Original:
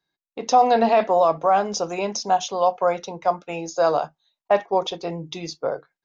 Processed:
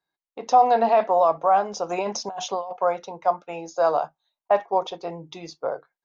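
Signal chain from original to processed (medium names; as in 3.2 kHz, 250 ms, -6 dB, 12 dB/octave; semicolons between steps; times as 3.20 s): peaking EQ 880 Hz +9 dB 2 oct; 1.89–2.73 s: compressor with a negative ratio -20 dBFS, ratio -1; trim -8.5 dB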